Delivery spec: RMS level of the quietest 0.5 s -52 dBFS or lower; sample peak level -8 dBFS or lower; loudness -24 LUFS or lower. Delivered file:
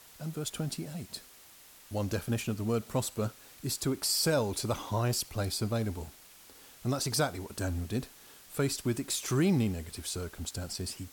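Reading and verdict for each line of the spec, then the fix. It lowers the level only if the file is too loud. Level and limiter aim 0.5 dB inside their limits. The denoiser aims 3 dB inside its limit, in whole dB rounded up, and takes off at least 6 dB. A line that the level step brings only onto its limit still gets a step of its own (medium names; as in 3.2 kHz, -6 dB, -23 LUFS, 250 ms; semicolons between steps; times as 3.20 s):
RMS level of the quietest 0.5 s -55 dBFS: pass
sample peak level -17.0 dBFS: pass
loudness -32.5 LUFS: pass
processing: none needed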